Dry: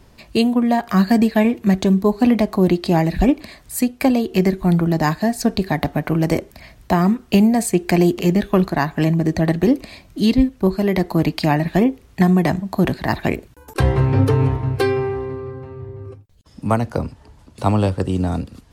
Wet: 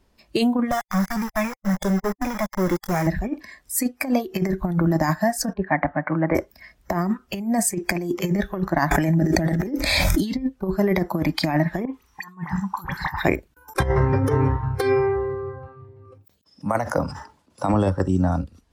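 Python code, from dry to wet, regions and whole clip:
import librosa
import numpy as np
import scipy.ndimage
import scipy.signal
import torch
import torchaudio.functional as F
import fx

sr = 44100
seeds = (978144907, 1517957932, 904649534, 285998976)

y = fx.chain(x, sr, fx.highpass(hz=78.0, slope=24),
    fx.tube_stage(drive_db=17.0, bias=0.65),
    fx.sample_gate(floor_db=-25.5), at=(0.71, 3.07))
y = fx.chain(y, sr, fx.lowpass(hz=2200.0, slope=24),
    fx.tilt_eq(slope=2.0),
    fx.band_widen(depth_pct=70), at=(5.53, 6.35))
y = fx.chain(y, sr, fx.high_shelf(hz=6200.0, db=3.5),
    fx.notch(hz=1100.0, q=7.7),
    fx.pre_swell(db_per_s=23.0), at=(8.91, 10.25))
y = fx.chain(y, sr, fx.low_shelf_res(hz=770.0, db=-6.0, q=3.0),
    fx.over_compress(threshold_db=-27.0, ratio=-0.5),
    fx.dispersion(late='highs', ms=49.0, hz=2100.0), at=(11.85, 13.24))
y = fx.chain(y, sr, fx.highpass(hz=140.0, slope=12),
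    fx.sustainer(db_per_s=73.0), at=(15.68, 17.74))
y = fx.noise_reduce_blind(y, sr, reduce_db=15)
y = fx.peak_eq(y, sr, hz=120.0, db=-9.5, octaves=0.49)
y = fx.over_compress(y, sr, threshold_db=-19.0, ratio=-0.5)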